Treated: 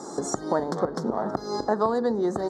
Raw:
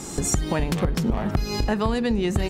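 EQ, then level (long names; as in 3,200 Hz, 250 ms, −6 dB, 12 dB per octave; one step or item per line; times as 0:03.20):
band-pass filter 370–3,800 Hz
Butterworth band-reject 2,600 Hz, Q 0.67
+4.0 dB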